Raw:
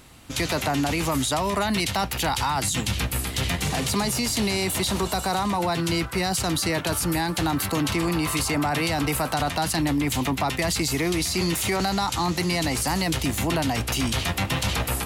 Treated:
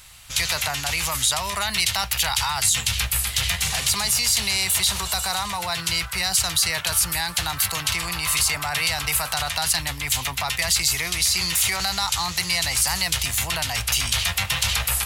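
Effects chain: passive tone stack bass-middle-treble 10-0-10; modulation noise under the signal 33 dB; gain +8 dB

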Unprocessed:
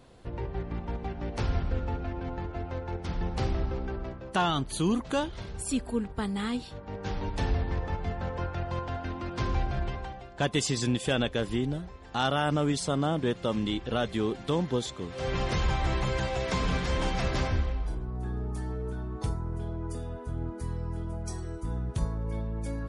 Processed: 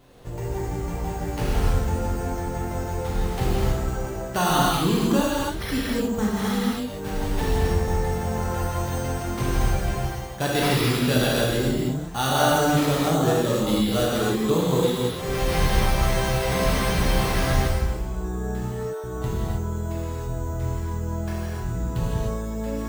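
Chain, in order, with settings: 18.62–19.04 steep high-pass 440 Hz 36 dB/oct; careless resampling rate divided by 6×, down none, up hold; non-linear reverb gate 0.33 s flat, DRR -6.5 dB

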